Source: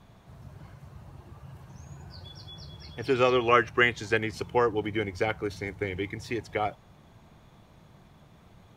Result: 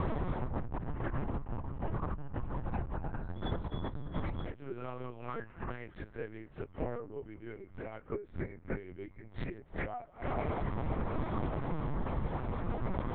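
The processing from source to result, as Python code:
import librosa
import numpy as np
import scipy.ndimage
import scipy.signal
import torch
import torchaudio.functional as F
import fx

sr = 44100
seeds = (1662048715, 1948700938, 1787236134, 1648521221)

y = fx.low_shelf(x, sr, hz=68.0, db=9.5)
y = fx.fold_sine(y, sr, drive_db=8, ceiling_db=-7.0)
y = fx.low_shelf(y, sr, hz=140.0, db=-2.0)
y = fx.echo_thinned(y, sr, ms=135, feedback_pct=77, hz=730.0, wet_db=-24)
y = fx.gate_flip(y, sr, shuts_db=-16.0, range_db=-34)
y = fx.stretch_vocoder_free(y, sr, factor=1.5)
y = scipy.signal.sosfilt(scipy.signal.butter(2, 1500.0, 'lowpass', fs=sr, output='sos'), y)
y = fx.over_compress(y, sr, threshold_db=-42.0, ratio=-1.0)
y = fx.hum_notches(y, sr, base_hz=50, count=2)
y = fx.lpc_vocoder(y, sr, seeds[0], excitation='pitch_kept', order=8)
y = F.gain(torch.from_numpy(y), 7.5).numpy()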